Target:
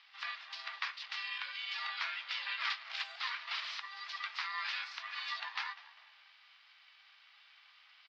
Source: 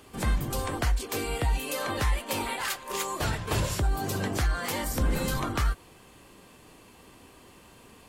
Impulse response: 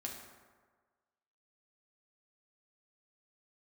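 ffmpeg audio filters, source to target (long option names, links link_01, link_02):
-filter_complex "[0:a]asuperpass=centerf=2600:order=12:qfactor=0.75,asplit=4[link_01][link_02][link_03][link_04];[link_02]adelay=199,afreqshift=-73,volume=-19dB[link_05];[link_03]adelay=398,afreqshift=-146,volume=-28.4dB[link_06];[link_04]adelay=597,afreqshift=-219,volume=-37.7dB[link_07];[link_01][link_05][link_06][link_07]amix=inputs=4:normalize=0,asplit=2[link_08][link_09];[1:a]atrim=start_sample=2205,asetrate=32634,aresample=44100[link_10];[link_09][link_10]afir=irnorm=-1:irlink=0,volume=-14dB[link_11];[link_08][link_11]amix=inputs=2:normalize=0,aeval=exprs='val(0)*sin(2*PI*380*n/s)':channel_layout=same"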